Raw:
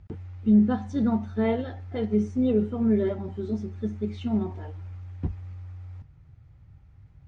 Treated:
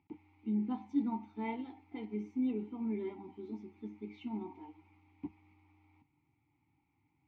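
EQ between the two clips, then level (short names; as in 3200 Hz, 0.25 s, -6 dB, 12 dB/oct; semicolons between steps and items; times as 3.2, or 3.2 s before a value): vowel filter u; tilt shelf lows -4.5 dB, about 920 Hz; low shelf 75 Hz -11.5 dB; +4.5 dB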